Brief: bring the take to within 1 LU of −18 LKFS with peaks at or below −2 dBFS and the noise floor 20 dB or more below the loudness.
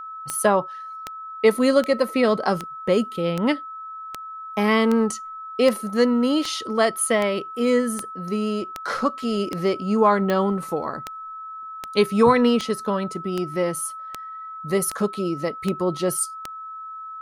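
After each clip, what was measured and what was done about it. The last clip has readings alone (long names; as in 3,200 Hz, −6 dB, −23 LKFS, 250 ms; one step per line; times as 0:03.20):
number of clicks 22; interfering tone 1,300 Hz; level of the tone −33 dBFS; integrated loudness −22.5 LKFS; sample peak −5.5 dBFS; target loudness −18.0 LKFS
→ click removal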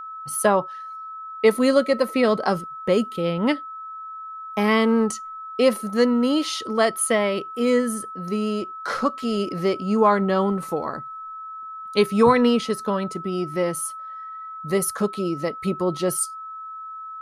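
number of clicks 0; interfering tone 1,300 Hz; level of the tone −33 dBFS
→ notch filter 1,300 Hz, Q 30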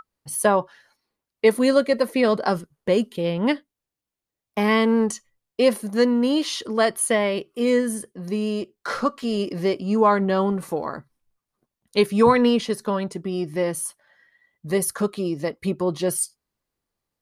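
interfering tone none found; integrated loudness −22.5 LKFS; sample peak −5.5 dBFS; target loudness −18.0 LKFS
→ level +4.5 dB
brickwall limiter −2 dBFS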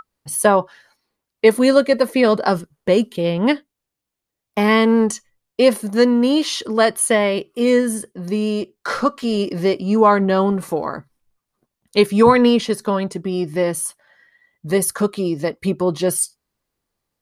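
integrated loudness −18.0 LKFS; sample peak −2.0 dBFS; background noise floor −83 dBFS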